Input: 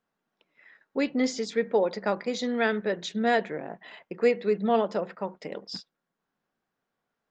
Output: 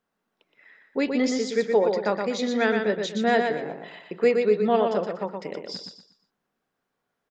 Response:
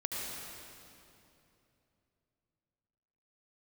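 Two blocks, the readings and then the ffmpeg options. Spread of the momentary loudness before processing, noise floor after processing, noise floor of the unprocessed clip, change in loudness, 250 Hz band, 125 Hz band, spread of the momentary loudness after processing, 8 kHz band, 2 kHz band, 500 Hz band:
14 LU, −81 dBFS, −84 dBFS, +3.5 dB, +3.0 dB, +3.0 dB, 14 LU, can't be measured, +3.0 dB, +4.0 dB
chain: -af "equalizer=frequency=420:width=7.5:gain=3,aecho=1:1:120|240|360|480:0.562|0.169|0.0506|0.0152,volume=1.5dB"

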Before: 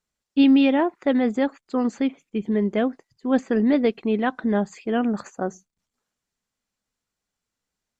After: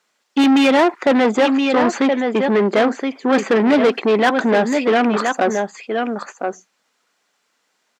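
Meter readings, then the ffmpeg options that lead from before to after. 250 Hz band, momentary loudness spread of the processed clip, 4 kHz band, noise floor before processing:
+4.0 dB, 10 LU, +11.0 dB, −85 dBFS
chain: -filter_complex "[0:a]aecho=1:1:1022:0.282,asplit=2[link_01][link_02];[link_02]highpass=frequency=720:poles=1,volume=26dB,asoftclip=type=tanh:threshold=-7.5dB[link_03];[link_01][link_03]amix=inputs=2:normalize=0,lowpass=frequency=2900:poles=1,volume=-6dB,highpass=220,volume=2dB"

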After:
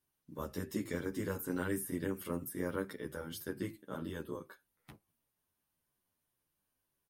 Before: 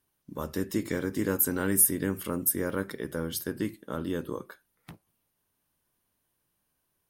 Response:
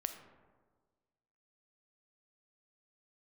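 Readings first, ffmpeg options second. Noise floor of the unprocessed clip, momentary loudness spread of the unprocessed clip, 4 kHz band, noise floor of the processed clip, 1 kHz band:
−78 dBFS, 14 LU, −8.5 dB, −85 dBFS, −7.0 dB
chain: -filter_complex "[0:a]acrossover=split=2800[link_01][link_02];[link_02]acompressor=threshold=-34dB:ratio=4:attack=1:release=60[link_03];[link_01][link_03]amix=inputs=2:normalize=0,asplit=2[link_04][link_05];[link_05]adelay=10,afreqshift=-2.9[link_06];[link_04][link_06]amix=inputs=2:normalize=1,volume=-4dB"

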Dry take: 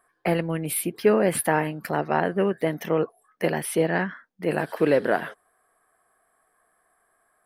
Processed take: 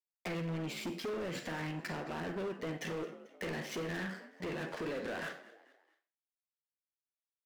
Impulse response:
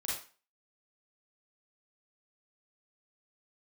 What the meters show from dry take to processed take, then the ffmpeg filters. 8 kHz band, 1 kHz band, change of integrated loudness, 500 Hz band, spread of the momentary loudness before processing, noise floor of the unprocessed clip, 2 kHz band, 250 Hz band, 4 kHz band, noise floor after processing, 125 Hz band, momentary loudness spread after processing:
−19.0 dB, −17.0 dB, −15.0 dB, −17.0 dB, 7 LU, −69 dBFS, −12.0 dB, −13.5 dB, −6.0 dB, below −85 dBFS, −11.5 dB, 5 LU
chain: -filter_complex "[0:a]alimiter=limit=-15dB:level=0:latency=1:release=16,aresample=16000,aresample=44100,equalizer=frequency=800:width=1.2:gain=-7.5,aeval=exprs='sgn(val(0))*max(abs(val(0))-0.00531,0)':channel_layout=same,acompressor=threshold=-34dB:ratio=6,lowshelf=frequency=88:gain=-11,asplit=2[link_01][link_02];[link_02]adelay=12,volume=-11dB[link_03];[link_01][link_03]amix=inputs=2:normalize=0,asplit=4[link_04][link_05][link_06][link_07];[link_05]adelay=220,afreqshift=53,volume=-20dB[link_08];[link_06]adelay=440,afreqshift=106,volume=-27.5dB[link_09];[link_07]adelay=660,afreqshift=159,volume=-35.1dB[link_10];[link_04][link_08][link_09][link_10]amix=inputs=4:normalize=0,asplit=2[link_11][link_12];[1:a]atrim=start_sample=2205[link_13];[link_12][link_13]afir=irnorm=-1:irlink=0,volume=-8dB[link_14];[link_11][link_14]amix=inputs=2:normalize=0,asoftclip=type=hard:threshold=-37dB,volume=2dB"

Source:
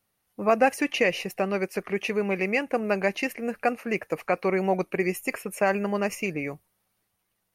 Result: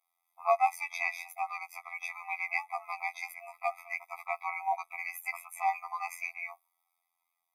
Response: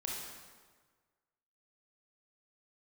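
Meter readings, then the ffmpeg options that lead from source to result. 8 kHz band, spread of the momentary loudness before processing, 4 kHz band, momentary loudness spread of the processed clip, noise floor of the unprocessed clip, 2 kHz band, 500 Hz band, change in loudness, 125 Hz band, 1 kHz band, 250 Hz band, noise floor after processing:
−8.5 dB, 7 LU, −15.0 dB, 9 LU, −77 dBFS, −6.0 dB, −15.0 dB, −8.0 dB, below −40 dB, −2.0 dB, below −40 dB, −83 dBFS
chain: -filter_complex "[0:a]highshelf=frequency=11000:gain=10,acrossover=split=380|430|2700[link_01][link_02][link_03][link_04];[link_03]acontrast=84[link_05];[link_01][link_02][link_05][link_04]amix=inputs=4:normalize=0,afftfilt=real='hypot(re,im)*cos(PI*b)':imag='0':win_size=2048:overlap=0.75,afftfilt=real='re*eq(mod(floor(b*sr/1024/650),2),1)':imag='im*eq(mod(floor(b*sr/1024/650),2),1)':win_size=1024:overlap=0.75,volume=-5dB"

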